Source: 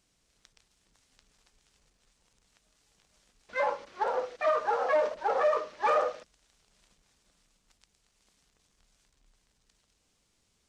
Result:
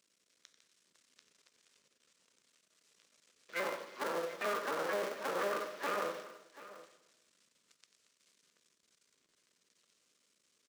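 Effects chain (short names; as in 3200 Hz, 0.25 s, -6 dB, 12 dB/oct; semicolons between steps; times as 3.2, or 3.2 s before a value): cycle switcher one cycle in 3, muted; HPF 300 Hz 12 dB/oct; bell 800 Hz -11 dB 0.49 oct; limiter -27 dBFS, peak gain reduction 8.5 dB; tapped delay 91/735 ms -11/-16.5 dB; non-linear reverb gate 0.44 s falling, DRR 11.5 dB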